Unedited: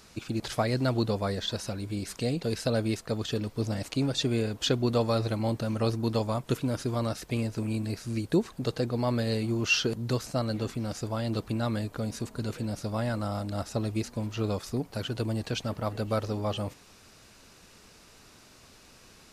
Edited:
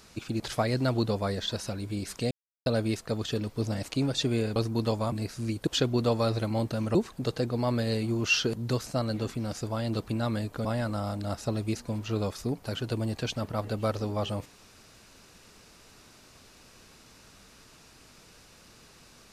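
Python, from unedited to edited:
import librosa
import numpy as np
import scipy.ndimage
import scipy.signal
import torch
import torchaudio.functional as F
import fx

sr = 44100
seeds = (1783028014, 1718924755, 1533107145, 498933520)

y = fx.edit(x, sr, fx.silence(start_s=2.31, length_s=0.35),
    fx.move(start_s=4.56, length_s=1.28, to_s=8.35),
    fx.cut(start_s=6.4, length_s=1.4),
    fx.cut(start_s=12.05, length_s=0.88), tone=tone)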